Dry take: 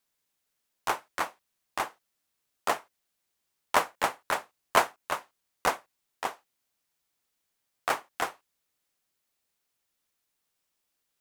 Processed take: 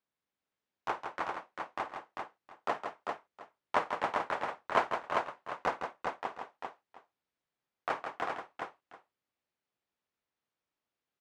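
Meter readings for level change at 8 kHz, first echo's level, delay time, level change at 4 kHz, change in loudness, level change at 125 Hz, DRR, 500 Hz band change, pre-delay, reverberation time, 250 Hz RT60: below −15 dB, −16.5 dB, 51 ms, −9.5 dB, −5.5 dB, −2.5 dB, no reverb audible, −2.5 dB, no reverb audible, no reverb audible, no reverb audible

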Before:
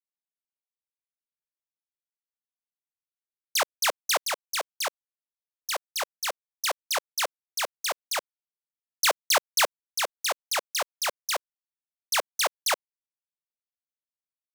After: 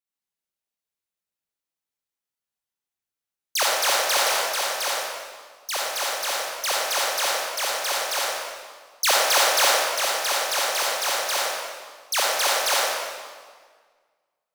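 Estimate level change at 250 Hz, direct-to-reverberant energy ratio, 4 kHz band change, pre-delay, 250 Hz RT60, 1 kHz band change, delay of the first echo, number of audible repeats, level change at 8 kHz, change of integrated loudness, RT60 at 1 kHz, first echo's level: +6.0 dB, −5.0 dB, +6.0 dB, 36 ms, 1.8 s, +6.0 dB, no echo audible, no echo audible, +6.0 dB, +5.5 dB, 1.6 s, no echo audible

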